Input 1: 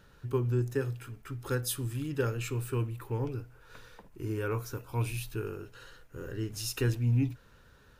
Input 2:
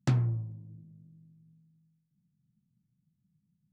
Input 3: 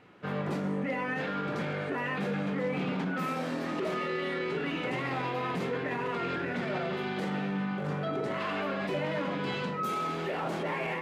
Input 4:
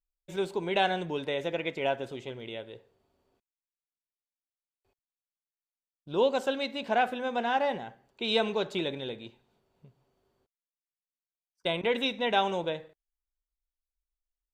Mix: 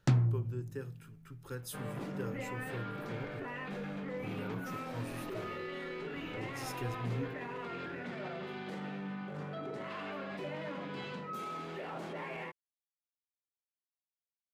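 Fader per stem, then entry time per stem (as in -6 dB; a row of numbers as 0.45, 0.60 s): -11.0 dB, -0.5 dB, -9.0 dB, off; 0.00 s, 0.00 s, 1.50 s, off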